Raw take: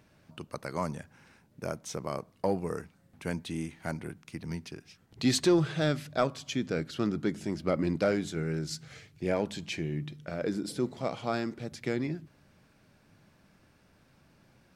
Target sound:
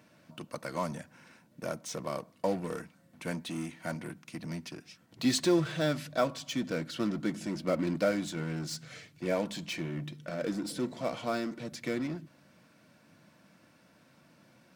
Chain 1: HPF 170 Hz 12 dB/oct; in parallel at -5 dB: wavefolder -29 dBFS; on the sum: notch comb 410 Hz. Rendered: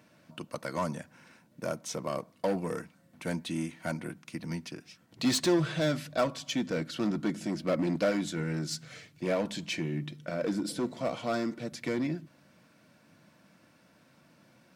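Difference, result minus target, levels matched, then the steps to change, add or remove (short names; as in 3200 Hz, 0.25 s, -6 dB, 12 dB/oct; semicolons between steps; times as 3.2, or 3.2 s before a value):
wavefolder: distortion -13 dB
change: wavefolder -39.5 dBFS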